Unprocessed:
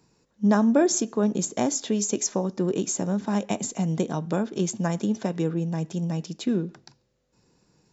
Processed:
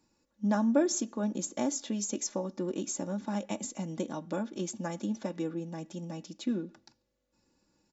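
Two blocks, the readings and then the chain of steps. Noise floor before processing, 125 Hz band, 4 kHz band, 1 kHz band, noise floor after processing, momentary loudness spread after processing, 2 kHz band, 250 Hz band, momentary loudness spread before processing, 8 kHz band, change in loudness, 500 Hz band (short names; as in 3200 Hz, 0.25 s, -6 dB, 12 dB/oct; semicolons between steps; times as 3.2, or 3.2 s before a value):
-69 dBFS, -12.0 dB, -7.0 dB, -7.5 dB, -78 dBFS, 10 LU, -7.5 dB, -7.5 dB, 8 LU, n/a, -8.0 dB, -8.0 dB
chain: comb 3.5 ms, depth 63%; gain -9 dB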